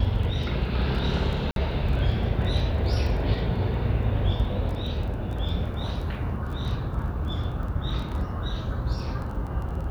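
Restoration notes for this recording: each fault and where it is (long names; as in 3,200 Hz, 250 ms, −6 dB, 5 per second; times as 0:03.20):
surface crackle 12 per second −33 dBFS
0:01.51–0:01.56: drop-out 52 ms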